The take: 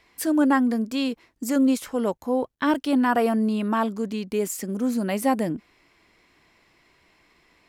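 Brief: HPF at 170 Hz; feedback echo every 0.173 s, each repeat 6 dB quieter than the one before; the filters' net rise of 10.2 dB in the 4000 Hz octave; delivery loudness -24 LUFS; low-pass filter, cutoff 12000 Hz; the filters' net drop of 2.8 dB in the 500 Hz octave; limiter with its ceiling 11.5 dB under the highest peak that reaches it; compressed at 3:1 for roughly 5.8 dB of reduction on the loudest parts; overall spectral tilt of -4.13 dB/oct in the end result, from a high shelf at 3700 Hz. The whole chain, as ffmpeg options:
-af "highpass=170,lowpass=12k,equalizer=f=500:t=o:g=-3.5,highshelf=f=3.7k:g=7.5,equalizer=f=4k:t=o:g=8.5,acompressor=threshold=-25dB:ratio=3,alimiter=limit=-21dB:level=0:latency=1,aecho=1:1:173|346|519|692|865|1038:0.501|0.251|0.125|0.0626|0.0313|0.0157,volume=5dB"

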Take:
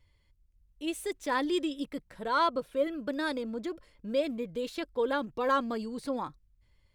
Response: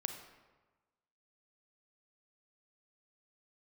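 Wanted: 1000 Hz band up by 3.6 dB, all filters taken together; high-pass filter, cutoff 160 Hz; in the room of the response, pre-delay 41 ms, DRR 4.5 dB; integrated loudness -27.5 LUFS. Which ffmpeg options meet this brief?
-filter_complex "[0:a]highpass=160,equalizer=f=1k:t=o:g=4,asplit=2[a][b];[1:a]atrim=start_sample=2205,adelay=41[c];[b][c]afir=irnorm=-1:irlink=0,volume=-4.5dB[d];[a][d]amix=inputs=2:normalize=0,volume=2dB"

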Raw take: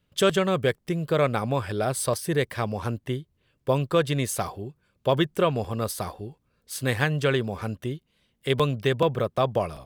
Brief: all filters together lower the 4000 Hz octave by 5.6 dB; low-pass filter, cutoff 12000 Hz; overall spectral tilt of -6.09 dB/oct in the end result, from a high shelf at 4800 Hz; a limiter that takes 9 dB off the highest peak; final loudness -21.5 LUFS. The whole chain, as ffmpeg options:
-af "lowpass=12k,equalizer=f=4k:t=o:g=-5.5,highshelf=f=4.8k:g=-4,volume=8.5dB,alimiter=limit=-9.5dB:level=0:latency=1"

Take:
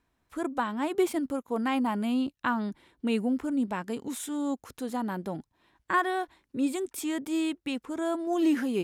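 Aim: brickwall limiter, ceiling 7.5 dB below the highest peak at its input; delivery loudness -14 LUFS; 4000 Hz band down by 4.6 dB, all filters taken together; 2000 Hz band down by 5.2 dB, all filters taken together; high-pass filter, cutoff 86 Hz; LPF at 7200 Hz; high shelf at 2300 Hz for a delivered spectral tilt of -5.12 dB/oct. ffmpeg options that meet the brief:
-af "highpass=86,lowpass=7.2k,equalizer=f=2k:t=o:g=-9,highshelf=f=2.3k:g=7.5,equalizer=f=4k:t=o:g=-9,volume=18.5dB,alimiter=limit=-4.5dB:level=0:latency=1"

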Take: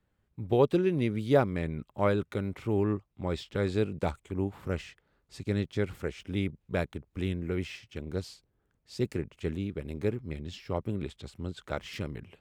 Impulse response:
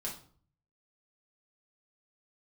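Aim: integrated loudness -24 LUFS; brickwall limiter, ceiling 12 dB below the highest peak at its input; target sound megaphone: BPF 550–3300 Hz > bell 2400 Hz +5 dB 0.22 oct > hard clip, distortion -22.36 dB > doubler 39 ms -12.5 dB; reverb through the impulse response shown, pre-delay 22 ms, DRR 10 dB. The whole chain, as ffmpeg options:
-filter_complex "[0:a]alimiter=limit=-24dB:level=0:latency=1,asplit=2[a][b];[1:a]atrim=start_sample=2205,adelay=22[c];[b][c]afir=irnorm=-1:irlink=0,volume=-10.5dB[d];[a][d]amix=inputs=2:normalize=0,highpass=550,lowpass=3.3k,equalizer=f=2.4k:t=o:w=0.22:g=5,asoftclip=type=hard:threshold=-30.5dB,asplit=2[e][f];[f]adelay=39,volume=-12.5dB[g];[e][g]amix=inputs=2:normalize=0,volume=20dB"

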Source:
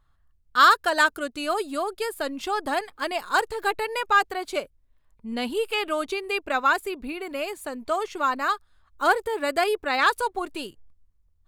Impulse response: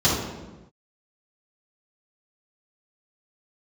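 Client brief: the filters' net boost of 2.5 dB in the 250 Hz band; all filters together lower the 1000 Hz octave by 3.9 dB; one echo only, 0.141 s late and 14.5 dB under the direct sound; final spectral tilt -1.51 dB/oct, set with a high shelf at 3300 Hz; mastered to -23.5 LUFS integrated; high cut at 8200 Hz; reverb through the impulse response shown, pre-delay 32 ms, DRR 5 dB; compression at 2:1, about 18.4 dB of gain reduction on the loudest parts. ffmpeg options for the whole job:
-filter_complex "[0:a]lowpass=8.2k,equalizer=f=250:t=o:g=3.5,equalizer=f=1k:t=o:g=-5,highshelf=f=3.3k:g=-4,acompressor=threshold=-51dB:ratio=2,aecho=1:1:141:0.188,asplit=2[a][b];[1:a]atrim=start_sample=2205,adelay=32[c];[b][c]afir=irnorm=-1:irlink=0,volume=-22.5dB[d];[a][d]amix=inputs=2:normalize=0,volume=16.5dB"

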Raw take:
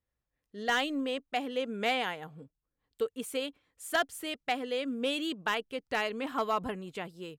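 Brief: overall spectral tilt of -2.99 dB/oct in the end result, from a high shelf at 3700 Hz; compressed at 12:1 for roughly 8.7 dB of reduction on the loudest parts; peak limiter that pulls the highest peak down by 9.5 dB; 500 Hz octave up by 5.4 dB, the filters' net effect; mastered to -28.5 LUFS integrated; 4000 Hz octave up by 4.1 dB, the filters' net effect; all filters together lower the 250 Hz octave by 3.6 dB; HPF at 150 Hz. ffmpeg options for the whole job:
-af "highpass=150,equalizer=f=250:t=o:g=-6,equalizer=f=500:t=o:g=7.5,highshelf=f=3.7k:g=-4.5,equalizer=f=4k:t=o:g=8.5,acompressor=threshold=-30dB:ratio=12,volume=10dB,alimiter=limit=-17.5dB:level=0:latency=1"

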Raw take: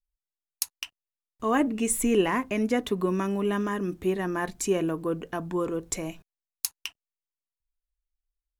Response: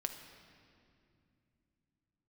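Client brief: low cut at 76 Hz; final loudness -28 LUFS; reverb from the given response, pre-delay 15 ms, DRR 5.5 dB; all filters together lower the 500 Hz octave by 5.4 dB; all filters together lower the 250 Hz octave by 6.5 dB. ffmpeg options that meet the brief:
-filter_complex "[0:a]highpass=76,equalizer=f=250:t=o:g=-7.5,equalizer=f=500:t=o:g=-4,asplit=2[a][b];[1:a]atrim=start_sample=2205,adelay=15[c];[b][c]afir=irnorm=-1:irlink=0,volume=-5.5dB[d];[a][d]amix=inputs=2:normalize=0,volume=3dB"

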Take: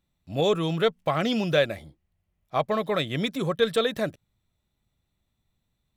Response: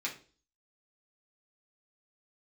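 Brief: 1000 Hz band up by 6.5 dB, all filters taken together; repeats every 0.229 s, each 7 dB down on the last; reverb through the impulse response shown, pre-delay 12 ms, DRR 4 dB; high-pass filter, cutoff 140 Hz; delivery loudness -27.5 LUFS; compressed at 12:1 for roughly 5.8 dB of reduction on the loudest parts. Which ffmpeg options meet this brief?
-filter_complex "[0:a]highpass=140,equalizer=f=1k:t=o:g=8.5,acompressor=threshold=-20dB:ratio=12,aecho=1:1:229|458|687|916|1145:0.447|0.201|0.0905|0.0407|0.0183,asplit=2[a][b];[1:a]atrim=start_sample=2205,adelay=12[c];[b][c]afir=irnorm=-1:irlink=0,volume=-7.5dB[d];[a][d]amix=inputs=2:normalize=0,volume=-1.5dB"

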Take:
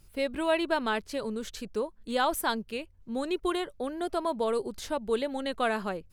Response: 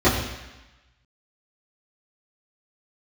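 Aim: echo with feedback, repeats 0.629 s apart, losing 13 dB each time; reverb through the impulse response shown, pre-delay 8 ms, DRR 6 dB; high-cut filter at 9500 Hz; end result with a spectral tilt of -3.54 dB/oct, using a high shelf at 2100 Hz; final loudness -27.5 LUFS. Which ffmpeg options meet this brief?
-filter_complex "[0:a]lowpass=9.5k,highshelf=f=2.1k:g=-6.5,aecho=1:1:629|1258|1887:0.224|0.0493|0.0108,asplit=2[a][b];[1:a]atrim=start_sample=2205,adelay=8[c];[b][c]afir=irnorm=-1:irlink=0,volume=-27dB[d];[a][d]amix=inputs=2:normalize=0,volume=2dB"

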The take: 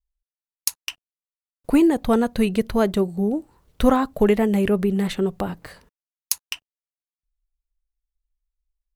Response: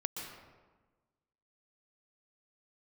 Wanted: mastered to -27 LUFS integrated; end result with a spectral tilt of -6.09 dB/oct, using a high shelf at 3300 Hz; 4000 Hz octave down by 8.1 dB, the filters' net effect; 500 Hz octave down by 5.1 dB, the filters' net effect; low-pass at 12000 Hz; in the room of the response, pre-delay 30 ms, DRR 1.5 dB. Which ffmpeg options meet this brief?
-filter_complex "[0:a]lowpass=12k,equalizer=f=500:t=o:g=-6.5,highshelf=f=3.3k:g=-7.5,equalizer=f=4k:t=o:g=-6,asplit=2[a][b];[1:a]atrim=start_sample=2205,adelay=30[c];[b][c]afir=irnorm=-1:irlink=0,volume=-3dB[d];[a][d]amix=inputs=2:normalize=0,volume=-6.5dB"

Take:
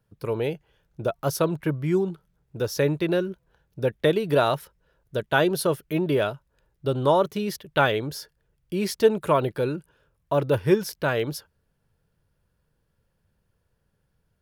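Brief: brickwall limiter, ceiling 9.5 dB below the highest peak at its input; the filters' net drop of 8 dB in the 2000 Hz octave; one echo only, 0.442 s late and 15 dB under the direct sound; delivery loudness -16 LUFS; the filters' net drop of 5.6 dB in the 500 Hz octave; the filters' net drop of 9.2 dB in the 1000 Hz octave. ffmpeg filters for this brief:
-af "equalizer=f=500:t=o:g=-4.5,equalizer=f=1k:t=o:g=-9,equalizer=f=2k:t=o:g=-7,alimiter=limit=-20.5dB:level=0:latency=1,aecho=1:1:442:0.178,volume=15.5dB"

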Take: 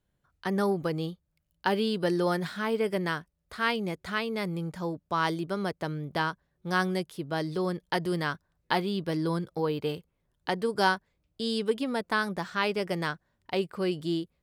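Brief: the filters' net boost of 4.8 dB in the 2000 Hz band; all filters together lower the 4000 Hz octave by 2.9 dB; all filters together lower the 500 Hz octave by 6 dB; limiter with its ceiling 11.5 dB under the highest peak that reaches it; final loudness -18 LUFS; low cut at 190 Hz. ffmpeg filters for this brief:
-af "highpass=190,equalizer=f=500:t=o:g=-8,equalizer=f=2k:t=o:g=8.5,equalizer=f=4k:t=o:g=-7.5,volume=16.5dB,alimiter=limit=-4dB:level=0:latency=1"

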